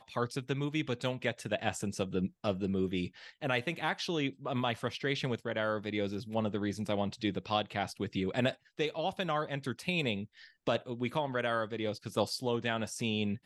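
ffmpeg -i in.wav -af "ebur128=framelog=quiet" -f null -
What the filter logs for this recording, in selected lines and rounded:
Integrated loudness:
  I:         -34.4 LUFS
  Threshold: -44.4 LUFS
Loudness range:
  LRA:         0.5 LU
  Threshold: -54.4 LUFS
  LRA low:   -34.6 LUFS
  LRA high:  -34.1 LUFS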